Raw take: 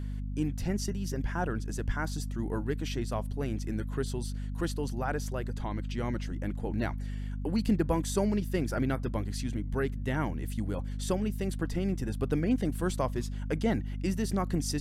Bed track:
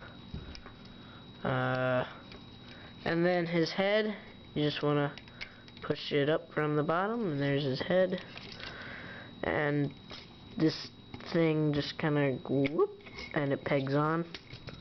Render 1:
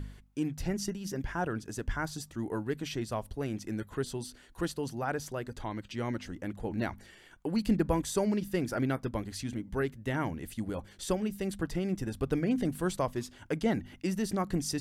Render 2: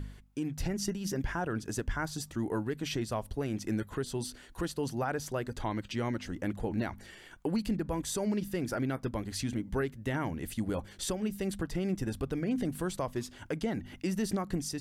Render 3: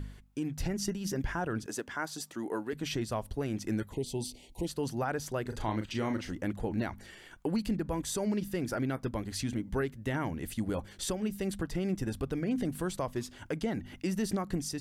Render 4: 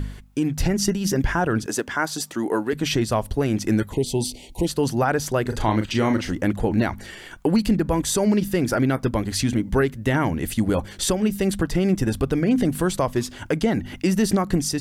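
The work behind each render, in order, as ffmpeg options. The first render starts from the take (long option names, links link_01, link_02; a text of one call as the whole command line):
ffmpeg -i in.wav -af "bandreject=frequency=50:width_type=h:width=4,bandreject=frequency=100:width_type=h:width=4,bandreject=frequency=150:width_type=h:width=4,bandreject=frequency=200:width_type=h:width=4,bandreject=frequency=250:width_type=h:width=4" out.wav
ffmpeg -i in.wav -af "alimiter=level_in=2.5dB:limit=-24dB:level=0:latency=1:release=253,volume=-2.5dB,dynaudnorm=framelen=280:gausssize=3:maxgain=4dB" out.wav
ffmpeg -i in.wav -filter_complex "[0:a]asettb=1/sr,asplit=3[link_01][link_02][link_03];[link_01]atrim=end=1.664[link_04];[link_02]atrim=start=1.66:end=2.73,asetpts=PTS-STARTPTS,afade=type=in:duration=0.004:curve=qsin,afade=type=out:start_time=1.066:duration=0.004:curve=qsin,highpass=280[link_05];[link_03]atrim=start=2.726[link_06];[link_04][link_05]acrossfade=duration=0.004:curve1=hsin:curve2=qsin[link_07];[link_07][link_06]acrossfade=duration=0.004:curve1=qsin:curve2=hsin,asplit=3[link_08][link_09][link_10];[link_08]afade=type=out:start_time=3.91:duration=0.02[link_11];[link_09]asuperstop=centerf=1400:order=12:qfactor=1.2,afade=type=in:start_time=3.91:duration=0.02,afade=type=out:start_time=4.66:duration=0.02[link_12];[link_10]afade=type=in:start_time=4.66:duration=0.02[link_13];[link_11][link_12][link_13]amix=inputs=3:normalize=0,asettb=1/sr,asplit=3[link_14][link_15][link_16];[link_14]atrim=end=5.424[link_17];[link_15]atrim=start=5.42:end=6.33,asetpts=PTS-STARTPTS,afade=type=in:duration=0.004:curve=qsin,afade=type=out:start_time=0.906:duration=0.004:curve=qsin,asplit=2[link_18][link_19];[link_19]adelay=37,volume=-6.5dB[link_20];[link_18][link_20]amix=inputs=2:normalize=0,atrim=end_sample=40131[link_21];[link_16]atrim=start=6.326[link_22];[link_17][link_21]acrossfade=duration=0.004:curve1=hsin:curve2=qsin[link_23];[link_23][link_22]acrossfade=duration=0.004:curve1=qsin:curve2=hsin" out.wav
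ffmpeg -i in.wav -af "volume=12dB" out.wav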